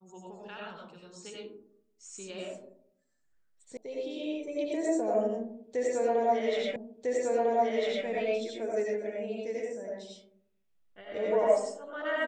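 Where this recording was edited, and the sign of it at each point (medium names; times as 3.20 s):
3.77 s: sound stops dead
6.76 s: repeat of the last 1.3 s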